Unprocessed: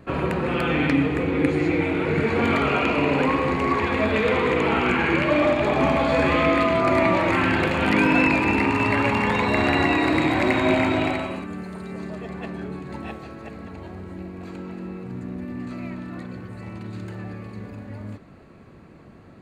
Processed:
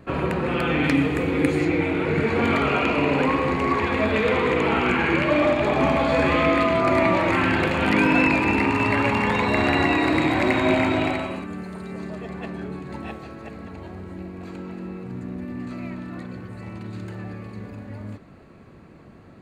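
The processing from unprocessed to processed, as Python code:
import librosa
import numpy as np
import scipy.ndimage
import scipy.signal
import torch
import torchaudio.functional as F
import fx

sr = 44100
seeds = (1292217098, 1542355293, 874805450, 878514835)

y = fx.high_shelf(x, sr, hz=5800.0, db=11.0, at=(0.84, 1.65))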